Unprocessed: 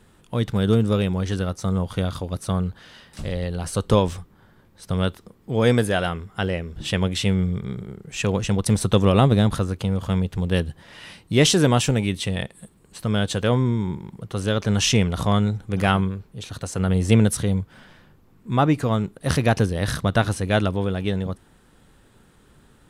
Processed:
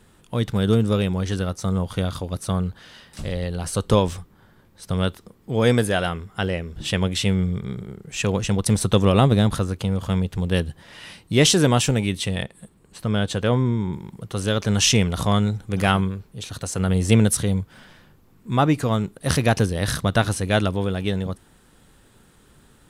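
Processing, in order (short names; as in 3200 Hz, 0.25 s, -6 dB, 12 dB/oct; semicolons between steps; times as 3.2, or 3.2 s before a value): high shelf 3900 Hz +3 dB, from 12.44 s -3 dB, from 13.93 s +5.5 dB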